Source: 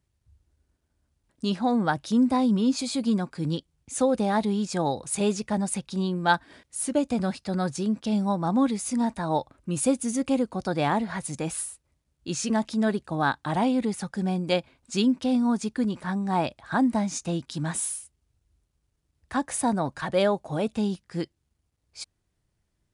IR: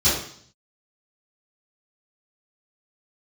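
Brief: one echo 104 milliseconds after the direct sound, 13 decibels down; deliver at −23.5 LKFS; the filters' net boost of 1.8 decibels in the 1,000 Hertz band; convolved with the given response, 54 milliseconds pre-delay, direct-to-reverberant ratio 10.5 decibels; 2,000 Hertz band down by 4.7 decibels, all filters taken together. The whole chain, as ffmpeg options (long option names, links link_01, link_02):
-filter_complex "[0:a]equalizer=frequency=1000:width_type=o:gain=4,equalizer=frequency=2000:width_type=o:gain=-9,aecho=1:1:104:0.224,asplit=2[link_01][link_02];[1:a]atrim=start_sample=2205,adelay=54[link_03];[link_02][link_03]afir=irnorm=-1:irlink=0,volume=-27dB[link_04];[link_01][link_04]amix=inputs=2:normalize=0,volume=2dB"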